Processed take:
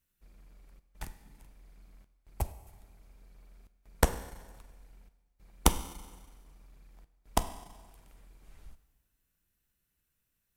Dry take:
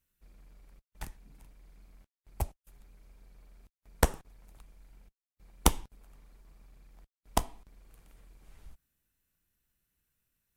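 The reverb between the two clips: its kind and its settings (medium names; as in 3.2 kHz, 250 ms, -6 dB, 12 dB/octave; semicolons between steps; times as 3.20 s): Schroeder reverb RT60 1.4 s, combs from 32 ms, DRR 12.5 dB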